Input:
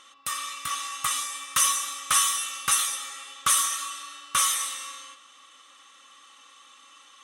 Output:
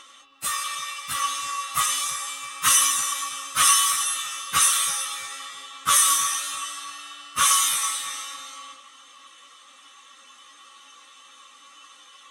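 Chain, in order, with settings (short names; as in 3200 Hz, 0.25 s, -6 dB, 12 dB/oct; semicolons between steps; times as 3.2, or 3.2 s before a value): darkening echo 0.196 s, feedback 39%, low-pass 3000 Hz, level -13 dB; plain phase-vocoder stretch 1.7×; gain +6 dB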